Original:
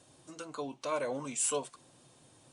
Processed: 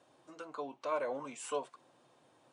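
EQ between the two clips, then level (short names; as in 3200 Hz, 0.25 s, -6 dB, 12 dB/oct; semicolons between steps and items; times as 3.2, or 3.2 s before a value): band-pass 890 Hz, Q 0.59; 0.0 dB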